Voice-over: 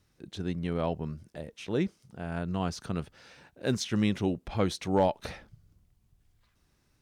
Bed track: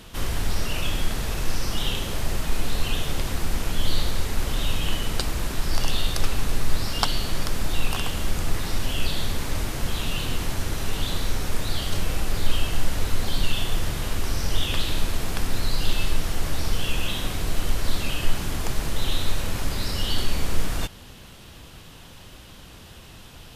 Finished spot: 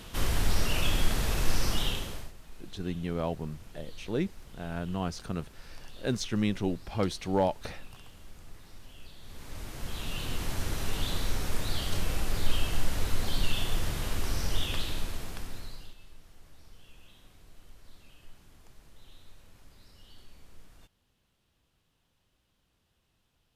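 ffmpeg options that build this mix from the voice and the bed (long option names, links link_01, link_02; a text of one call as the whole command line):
ffmpeg -i stem1.wav -i stem2.wav -filter_complex "[0:a]adelay=2400,volume=-1.5dB[link_01];[1:a]volume=18dB,afade=type=out:start_time=1.67:duration=0.65:silence=0.0707946,afade=type=in:start_time=9.21:duration=1.45:silence=0.105925,afade=type=out:start_time=14.39:duration=1.56:silence=0.0595662[link_02];[link_01][link_02]amix=inputs=2:normalize=0" out.wav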